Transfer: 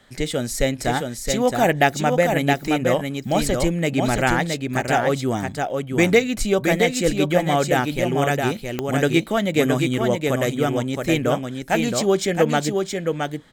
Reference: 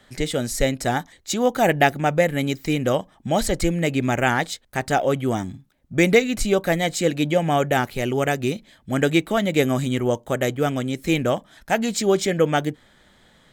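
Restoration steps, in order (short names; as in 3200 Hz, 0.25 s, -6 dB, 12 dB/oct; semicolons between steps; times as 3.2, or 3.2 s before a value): de-click; inverse comb 0.669 s -4.5 dB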